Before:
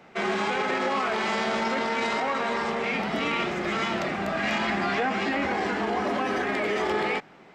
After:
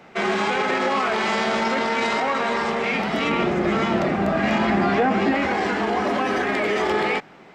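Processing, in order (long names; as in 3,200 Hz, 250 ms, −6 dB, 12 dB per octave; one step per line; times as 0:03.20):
0:03.29–0:05.35: tilt shelving filter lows +5.5 dB, about 1,100 Hz
level +4.5 dB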